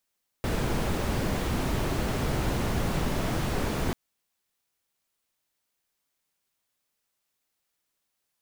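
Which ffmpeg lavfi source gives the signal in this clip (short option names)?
-f lavfi -i "anoisesrc=c=brown:a=0.209:d=3.49:r=44100:seed=1"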